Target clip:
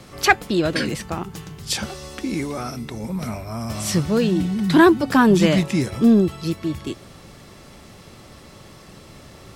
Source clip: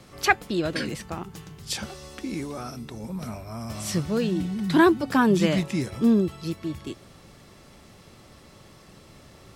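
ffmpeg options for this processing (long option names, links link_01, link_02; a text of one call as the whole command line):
ffmpeg -i in.wav -filter_complex "[0:a]asettb=1/sr,asplit=3[link_01][link_02][link_03];[link_01]atrim=end=2.394[link_04];[link_02]atrim=start=2.39:end=3.45,asetpts=PTS-STARTPTS,afade=type=in:duration=0.004:curve=qsin,afade=type=out:start_time=1.056:duration=0.004:curve=qsin,equalizer=frequency=2100:width_type=o:width=0.21:gain=6[link_05];[link_03]atrim=start=3.446[link_06];[link_04][link_05]acrossfade=duration=0.004:curve1=hsin:curve2=qsin[link_07];[link_07][link_06]acrossfade=duration=0.004:curve1=qsin:curve2=hsin,asplit=2[link_08][link_09];[link_09]asoftclip=type=tanh:threshold=-17dB,volume=-5dB[link_10];[link_08][link_10]amix=inputs=2:normalize=0,volume=2.5dB" out.wav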